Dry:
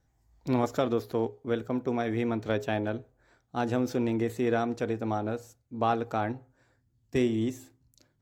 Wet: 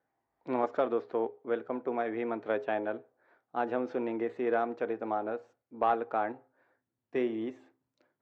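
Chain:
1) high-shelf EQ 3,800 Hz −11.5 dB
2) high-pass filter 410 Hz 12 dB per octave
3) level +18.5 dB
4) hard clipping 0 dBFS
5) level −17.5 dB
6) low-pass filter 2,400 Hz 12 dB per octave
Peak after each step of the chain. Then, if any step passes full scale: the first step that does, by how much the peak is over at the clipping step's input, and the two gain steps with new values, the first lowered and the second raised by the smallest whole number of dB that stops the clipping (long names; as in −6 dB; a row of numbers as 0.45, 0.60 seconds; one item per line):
−13.5, −15.0, +3.5, 0.0, −17.5, −17.0 dBFS
step 3, 3.5 dB
step 3 +14.5 dB, step 5 −13.5 dB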